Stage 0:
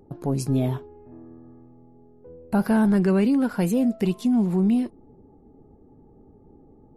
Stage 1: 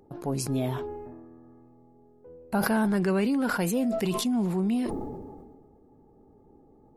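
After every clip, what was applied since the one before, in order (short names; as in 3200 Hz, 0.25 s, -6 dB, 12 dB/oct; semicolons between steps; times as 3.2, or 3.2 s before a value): low shelf 380 Hz -8.5 dB; sustainer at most 34 dB/s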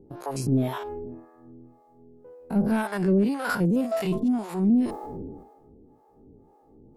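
stepped spectrum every 50 ms; sine folder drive 6 dB, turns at -11 dBFS; harmonic tremolo 1.9 Hz, depth 100%, crossover 520 Hz; gain -1.5 dB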